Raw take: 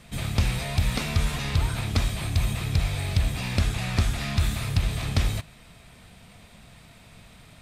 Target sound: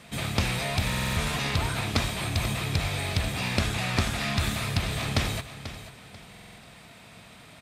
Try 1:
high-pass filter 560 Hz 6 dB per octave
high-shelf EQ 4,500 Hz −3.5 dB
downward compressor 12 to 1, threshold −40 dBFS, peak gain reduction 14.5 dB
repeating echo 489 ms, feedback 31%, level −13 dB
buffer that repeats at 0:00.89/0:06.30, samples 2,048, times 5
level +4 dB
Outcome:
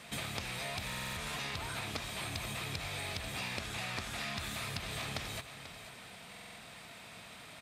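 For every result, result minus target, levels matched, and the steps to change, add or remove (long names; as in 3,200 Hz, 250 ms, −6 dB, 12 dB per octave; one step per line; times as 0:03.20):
downward compressor: peak gain reduction +14.5 dB; 250 Hz band −2.5 dB
remove: downward compressor 12 to 1, threshold −40 dBFS, peak gain reduction 14.5 dB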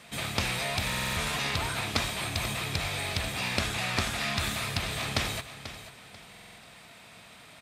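250 Hz band −3.5 dB
change: high-pass filter 230 Hz 6 dB per octave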